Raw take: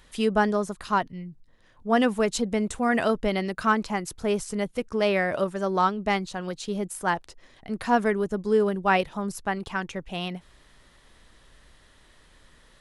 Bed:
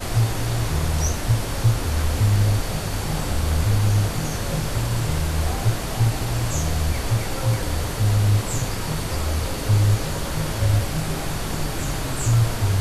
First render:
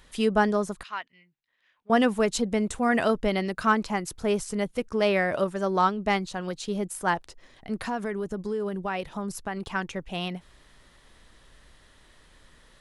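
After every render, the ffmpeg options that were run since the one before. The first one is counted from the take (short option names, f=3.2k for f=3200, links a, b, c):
-filter_complex "[0:a]asettb=1/sr,asplit=3[a][b][c];[a]atrim=end=0.834[d];[b]atrim=start=0.83:end=1.9,asetpts=PTS-STARTPTS,afade=t=in:d=0.004:c=qsin,afade=t=out:st=1.066:d=0.004:c=qsin,bandpass=f=2.4k:t=q:w=1.8[e];[c]atrim=start=1.896[f];[d][e]acrossfade=d=0.004:c1=hsin:c2=qsin[g];[g][f]acrossfade=d=0.004:c1=qsin:c2=hsin,asettb=1/sr,asplit=3[h][i][j];[h]atrim=end=7.824[k];[i]atrim=start=7.82:end=9.74,asetpts=PTS-STARTPTS,afade=t=in:d=0.004:c=qsin,afade=t=out:st=1.916:d=0.004:c=qsin,acompressor=threshold=-27dB:ratio=4:attack=3.2:release=140:knee=1:detection=peak[l];[j]atrim=start=9.736[m];[k][l]acrossfade=d=0.004:c1=hsin:c2=qsin[n];[n][m]acrossfade=d=0.004:c1=qsin:c2=hsin"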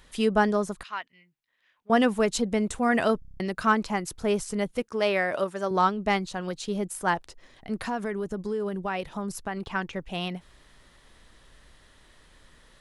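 -filter_complex "[0:a]asettb=1/sr,asplit=3[a][b][c];[a]atrim=end=4.824[d];[b]atrim=start=4.82:end=5.71,asetpts=PTS-STARTPTS,afade=t=in:d=0.004:c=qsin,afade=t=out:st=0.886:d=0.004:c=qsin,highpass=f=330:p=1[e];[c]atrim=start=5.706[f];[d][e]acrossfade=d=0.004:c1=hsin:c2=qsin[g];[g][f]acrossfade=d=0.004:c1=qsin:c2=hsin,asettb=1/sr,asplit=3[h][i][j];[h]atrim=end=9.484[k];[i]atrim=start=9.48:end=9.93,asetpts=PTS-STARTPTS,afade=t=in:d=0.004:c=qsin,afade=t=out:st=0.446:d=0.004:c=qsin,acrossover=split=4800[l][m];[m]acompressor=threshold=-59dB:ratio=4:attack=1:release=60[n];[l][n]amix=inputs=2:normalize=0[o];[j]atrim=start=9.926[p];[k][o]acrossfade=d=0.004:c1=hsin:c2=qsin[q];[q][p]acrossfade=d=0.004:c1=qsin:c2=hsin,asplit=8[r][s][t][u][v][w][x][y];[r]atrim=end=3.222[z];[s]atrim=start=3.188:end=3.222[aa];[t]atrim=start=3.188:end=3.222[ab];[u]atrim=start=3.188:end=3.222[ac];[v]atrim=start=3.188:end=3.222[ad];[w]atrim=start=3.188:end=3.222[ae];[x]atrim=start=3.188:end=3.222[af];[y]atrim=start=3.398[ag];[z][aa]acrossfade=d=0.004:c1=hsin:c2=hsin[ah];[ah][ab]acrossfade=d=0.004:c1=hsin:c2=hsin[ai];[ai][ac]acrossfade=d=0.004:c1=hsin:c2=hsin[aj];[aj][ad]acrossfade=d=0.004:c1=hsin:c2=hsin[ak];[ak][ae]acrossfade=d=0.004:c1=hsin:c2=hsin[al];[al][af]acrossfade=d=0.004:c1=hsin:c2=hsin[am];[am][ag]acrossfade=d=0.004:c1=hsin:c2=hsin"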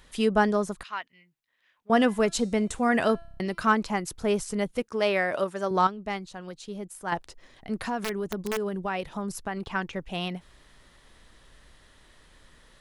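-filter_complex "[0:a]asettb=1/sr,asplit=3[a][b][c];[a]atrim=end=1.924[d];[b]atrim=start=1.92:end=3.69,asetpts=PTS-STARTPTS,afade=t=in:d=0.004:c=qsin,afade=t=out:st=1.766:d=0.004:c=qsin,bandreject=f=337.9:t=h:w=4,bandreject=f=675.8:t=h:w=4,bandreject=f=1.0137k:t=h:w=4,bandreject=f=1.3516k:t=h:w=4,bandreject=f=1.6895k:t=h:w=4,bandreject=f=2.0274k:t=h:w=4,bandreject=f=2.3653k:t=h:w=4,bandreject=f=2.7032k:t=h:w=4,bandreject=f=3.0411k:t=h:w=4,bandreject=f=3.379k:t=h:w=4,bandreject=f=3.7169k:t=h:w=4,bandreject=f=4.0548k:t=h:w=4,bandreject=f=4.3927k:t=h:w=4,bandreject=f=4.7306k:t=h:w=4,bandreject=f=5.0685k:t=h:w=4,bandreject=f=5.4064k:t=h:w=4,bandreject=f=5.7443k:t=h:w=4,bandreject=f=6.0822k:t=h:w=4,bandreject=f=6.4201k:t=h:w=4,bandreject=f=6.758k:t=h:w=4,bandreject=f=7.0959k:t=h:w=4,bandreject=f=7.4338k:t=h:w=4,bandreject=f=7.7717k:t=h:w=4,bandreject=f=8.1096k:t=h:w=4,bandreject=f=8.4475k:t=h:w=4,bandreject=f=8.7854k:t=h:w=4,bandreject=f=9.1233k:t=h:w=4,bandreject=f=9.4612k:t=h:w=4,bandreject=f=9.7991k:t=h:w=4,bandreject=f=10.137k:t=h:w=4[e];[c]atrim=start=3.686[f];[d][e]acrossfade=d=0.004:c1=hsin:c2=qsin[g];[g][f]acrossfade=d=0.004:c1=qsin:c2=hsin,asettb=1/sr,asplit=3[h][i][j];[h]atrim=end=8.014[k];[i]atrim=start=8.01:end=8.66,asetpts=PTS-STARTPTS,afade=t=in:d=0.004:c=qsin,afade=t=out:st=0.646:d=0.004:c=qsin,aeval=exprs='(mod(13.3*val(0)+1,2)-1)/13.3':c=same[l];[j]atrim=start=8.656[m];[k][l]acrossfade=d=0.004:c1=hsin:c2=qsin[n];[n][m]acrossfade=d=0.004:c1=qsin:c2=hsin,asplit=3[o][p][q];[o]atrim=end=5.872[r];[p]atrim=start=5.868:end=7.122,asetpts=PTS-STARTPTS,volume=-7.5dB[s];[q]atrim=start=7.118[t];[r][s]acrossfade=d=0.004:c1=hsin:c2=hsin[u];[u][t]acrossfade=d=0.004:c1=hsin:c2=hsin"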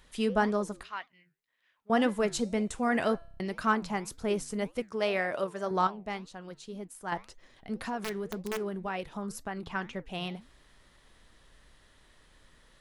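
-af "flanger=delay=4.2:depth=6.3:regen=-85:speed=1.9:shape=triangular"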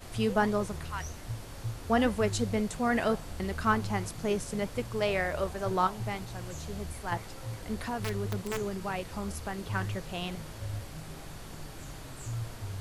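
-filter_complex "[1:a]volume=-18dB[a];[0:a][a]amix=inputs=2:normalize=0"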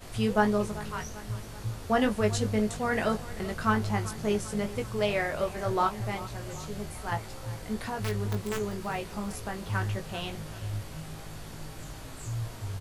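-filter_complex "[0:a]asplit=2[a][b];[b]adelay=19,volume=-5.5dB[c];[a][c]amix=inputs=2:normalize=0,aecho=1:1:389|778|1167|1556|1945:0.141|0.0777|0.0427|0.0235|0.0129"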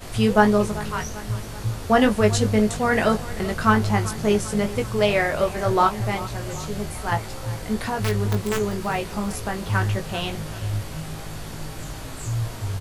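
-af "volume=8dB"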